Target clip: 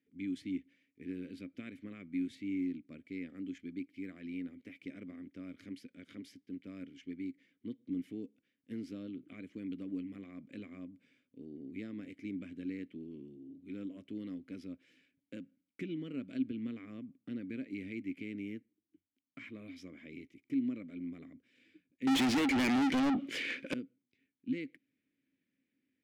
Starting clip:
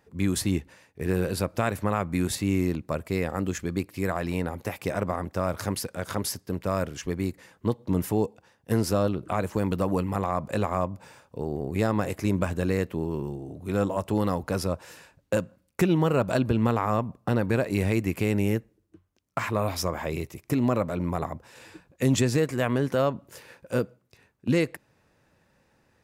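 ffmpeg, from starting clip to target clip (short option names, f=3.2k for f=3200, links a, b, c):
-filter_complex "[0:a]asplit=3[a][b][c];[a]bandpass=f=270:t=q:w=8,volume=0dB[d];[b]bandpass=f=2.29k:t=q:w=8,volume=-6dB[e];[c]bandpass=f=3.01k:t=q:w=8,volume=-9dB[f];[d][e][f]amix=inputs=3:normalize=0,asettb=1/sr,asplit=3[g][h][i];[g]atrim=end=22.074[j];[h]atrim=start=22.07:end=23.74,asetpts=PTS-STARTPTS,afade=t=in:d=0.004:c=qsin,afade=t=out:st=1.666:d=0.004:c=qsin,asplit=2[k][l];[l]highpass=f=720:p=1,volume=40dB,asoftclip=type=tanh:threshold=-18dB[m];[k][m]amix=inputs=2:normalize=0,lowpass=f=5.4k:p=1,volume=-6dB[n];[i]atrim=start=23.736[o];[j][n]acrossfade=d=0.004:c1=hsin:c2=qsin[p];[p][o]acrossfade=d=0.004:c1=qsin:c2=hsin,volume=-4.5dB"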